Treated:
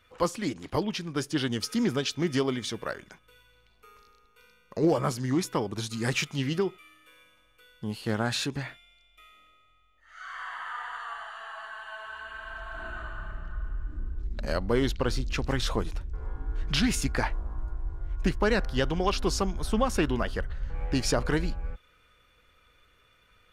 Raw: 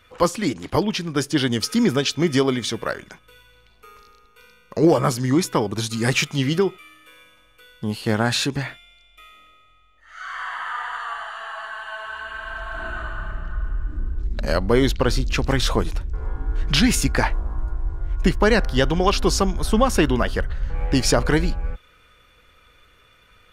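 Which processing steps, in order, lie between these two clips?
highs frequency-modulated by the lows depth 0.12 ms
level −8 dB

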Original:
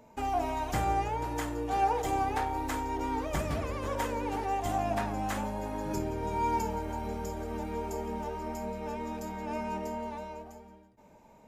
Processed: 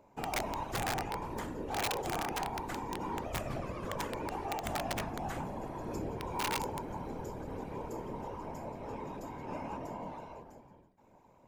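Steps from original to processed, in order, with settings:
high-shelf EQ 2,800 Hz −4.5 dB
random phases in short frames
wrap-around overflow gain 22 dB
level −5 dB

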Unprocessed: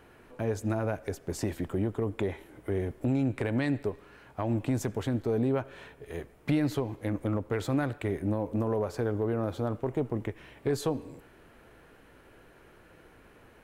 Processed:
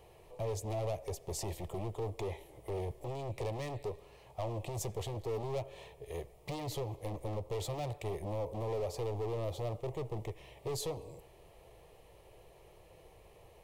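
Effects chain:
hard clipping −31.5 dBFS, distortion −6 dB
phaser with its sweep stopped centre 620 Hz, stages 4
level +1 dB

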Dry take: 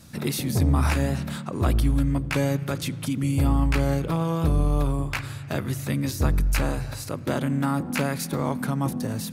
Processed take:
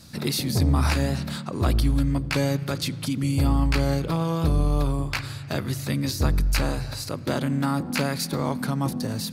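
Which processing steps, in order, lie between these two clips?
parametric band 4,500 Hz +8.5 dB 0.52 octaves

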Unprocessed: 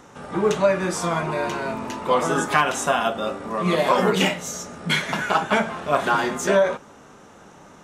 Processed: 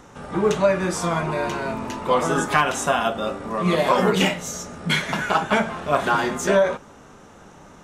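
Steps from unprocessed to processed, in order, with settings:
low-shelf EQ 77 Hz +11 dB

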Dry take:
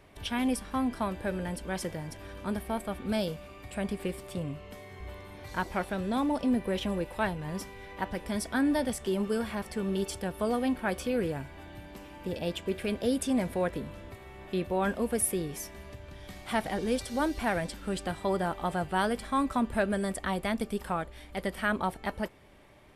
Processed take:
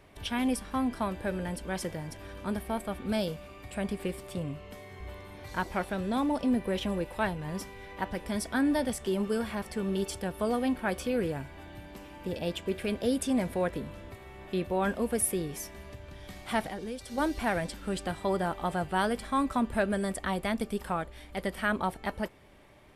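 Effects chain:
0:16.61–0:17.18: downward compressor 4 to 1, threshold −36 dBFS, peak gain reduction 10.5 dB

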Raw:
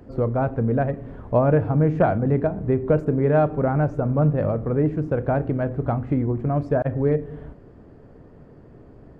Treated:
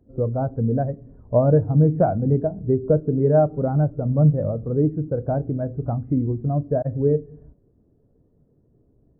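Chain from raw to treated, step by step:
high-shelf EQ 2,400 Hz −9 dB
every bin expanded away from the loudest bin 1.5 to 1

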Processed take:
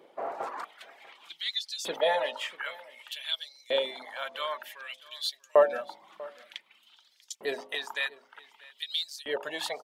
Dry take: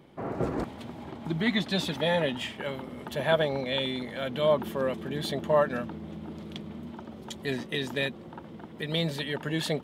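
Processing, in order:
auto-filter high-pass saw up 0.54 Hz 450–6,300 Hz
reverb reduction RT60 0.64 s
hum removal 52.01 Hz, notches 18
on a send: single-tap delay 642 ms −21.5 dB
on the sum: level −1 dB

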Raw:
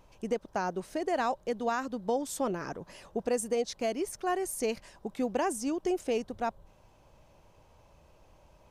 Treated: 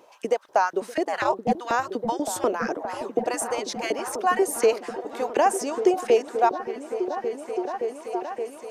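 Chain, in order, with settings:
auto-filter high-pass saw up 4.1 Hz 320–2,000 Hz
0:01.04–0:01.51: ring modulation 71 Hz → 270 Hz
echo whose low-pass opens from repeat to repeat 571 ms, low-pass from 200 Hz, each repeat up 1 octave, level −3 dB
level +6.5 dB

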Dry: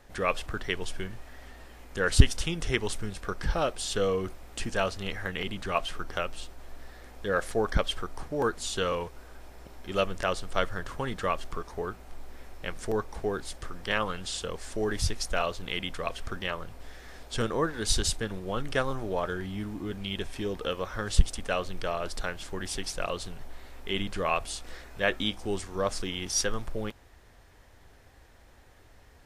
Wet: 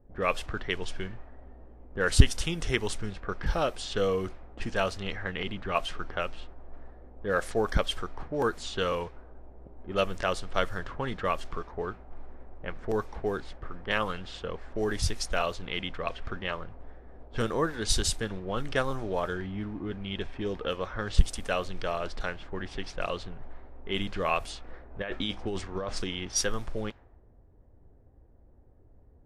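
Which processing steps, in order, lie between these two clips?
0:24.90–0:26.04: compressor whose output falls as the input rises −31 dBFS, ratio −1
low-pass that shuts in the quiet parts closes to 370 Hz, open at −25 dBFS

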